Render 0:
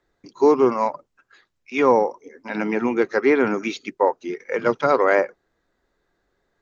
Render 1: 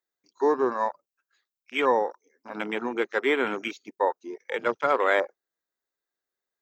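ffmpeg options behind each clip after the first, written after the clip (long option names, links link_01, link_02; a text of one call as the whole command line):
ffmpeg -i in.wav -af "afwtdn=0.0398,aemphasis=mode=production:type=riaa,volume=-4dB" out.wav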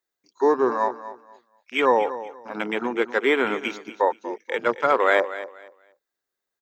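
ffmpeg -i in.wav -af "aecho=1:1:240|480|720:0.2|0.0459|0.0106,volume=3.5dB" out.wav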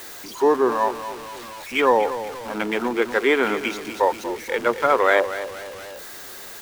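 ffmpeg -i in.wav -af "aeval=exprs='val(0)+0.5*0.0251*sgn(val(0))':channel_layout=same,volume=1dB" out.wav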